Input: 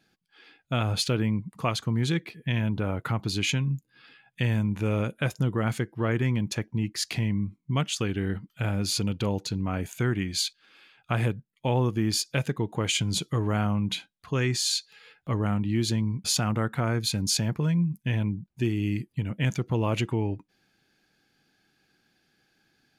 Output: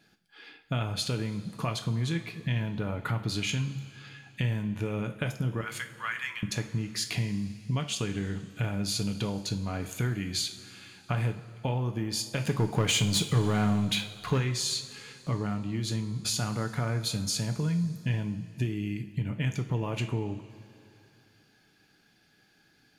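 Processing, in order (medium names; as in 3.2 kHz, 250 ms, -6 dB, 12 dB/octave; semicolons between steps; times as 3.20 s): 5.61–6.43 s: high-pass 1.2 kHz 24 dB/octave; compression 6:1, threshold -32 dBFS, peak gain reduction 12 dB; 12.44–14.38 s: waveshaping leveller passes 2; two-slope reverb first 0.37 s, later 2.9 s, from -16 dB, DRR 5 dB; trim +3 dB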